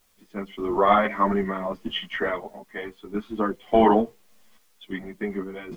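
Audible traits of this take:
sample-and-hold tremolo, depth 80%
a quantiser's noise floor 12 bits, dither triangular
a shimmering, thickened sound

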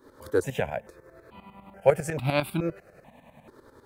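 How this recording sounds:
tremolo saw up 10 Hz, depth 75%
notches that jump at a steady rate 2.3 Hz 710–1,800 Hz

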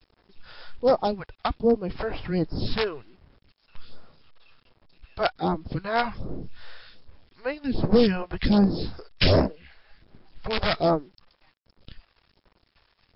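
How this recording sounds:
phaser sweep stages 2, 1.3 Hz, lowest notch 180–3,100 Hz
a quantiser's noise floor 10 bits, dither none
MP3

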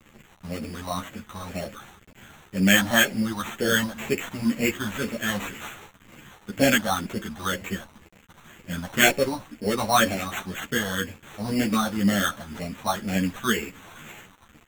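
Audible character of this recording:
a quantiser's noise floor 8 bits, dither none
phaser sweep stages 4, 2 Hz, lowest notch 390–1,200 Hz
aliases and images of a low sample rate 4,900 Hz, jitter 0%
a shimmering, thickened sound

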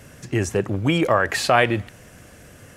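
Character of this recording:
background noise floor −47 dBFS
spectral slope −5.0 dB per octave

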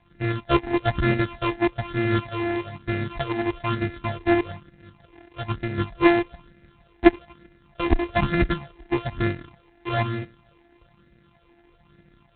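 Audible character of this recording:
a buzz of ramps at a fixed pitch in blocks of 128 samples
phaser sweep stages 8, 1.1 Hz, lowest notch 150–1,000 Hz
G.726

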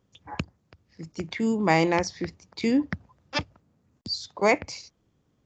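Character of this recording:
background noise floor −71 dBFS
spectral slope −5.0 dB per octave

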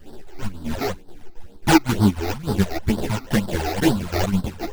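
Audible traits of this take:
aliases and images of a low sample rate 1,200 Hz, jitter 20%
phaser sweep stages 12, 2.1 Hz, lowest notch 160–2,400 Hz
chopped level 3.7 Hz, depth 60%, duty 75%
a shimmering, thickened sound

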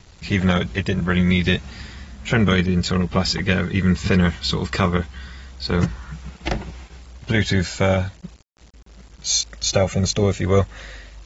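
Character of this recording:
a quantiser's noise floor 8 bits, dither none
AAC

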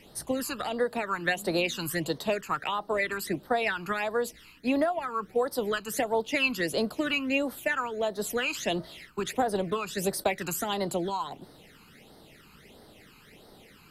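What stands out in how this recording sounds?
phaser sweep stages 12, 1.5 Hz, lowest notch 590–2,500 Hz

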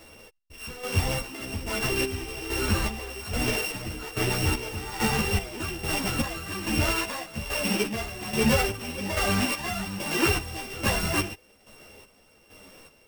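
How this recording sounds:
a buzz of ramps at a fixed pitch in blocks of 16 samples
chopped level 1.2 Hz, depth 65%, duty 45%
a shimmering, thickened sound

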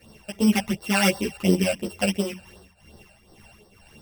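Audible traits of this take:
a buzz of ramps at a fixed pitch in blocks of 16 samples
phaser sweep stages 12, 2.8 Hz, lowest notch 330–2,500 Hz
tremolo triangle 2.1 Hz, depth 65%
a shimmering, thickened sound

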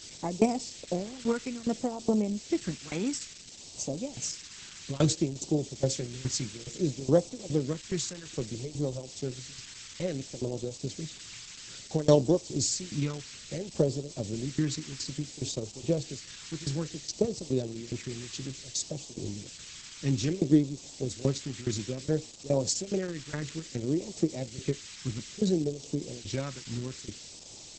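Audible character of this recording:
tremolo saw down 2.4 Hz, depth 95%
a quantiser's noise floor 8 bits, dither triangular
phaser sweep stages 2, 0.59 Hz, lowest notch 610–1,500 Hz
Opus

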